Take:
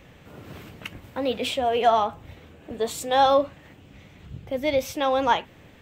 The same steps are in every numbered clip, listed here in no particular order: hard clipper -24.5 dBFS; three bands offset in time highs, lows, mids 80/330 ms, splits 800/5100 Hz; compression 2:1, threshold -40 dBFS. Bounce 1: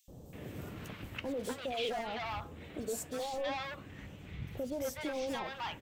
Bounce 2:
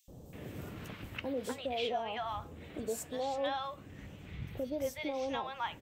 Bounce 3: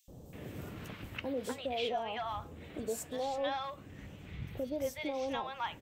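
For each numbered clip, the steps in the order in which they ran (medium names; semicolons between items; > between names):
hard clipper > compression > three bands offset in time; compression > three bands offset in time > hard clipper; compression > hard clipper > three bands offset in time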